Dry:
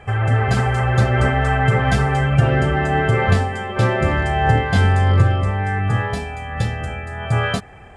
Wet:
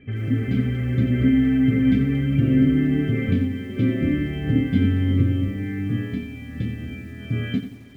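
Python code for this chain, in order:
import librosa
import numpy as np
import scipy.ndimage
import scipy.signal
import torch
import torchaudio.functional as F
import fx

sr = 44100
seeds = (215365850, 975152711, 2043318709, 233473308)

p1 = fx.vowel_filter(x, sr, vowel='i')
p2 = fx.tilt_eq(p1, sr, slope=-3.5)
p3 = p2 + fx.echo_single(p2, sr, ms=411, db=-21.5, dry=0)
p4 = fx.echo_crushed(p3, sr, ms=88, feedback_pct=35, bits=9, wet_db=-10.5)
y = F.gain(torch.from_numpy(p4), 5.5).numpy()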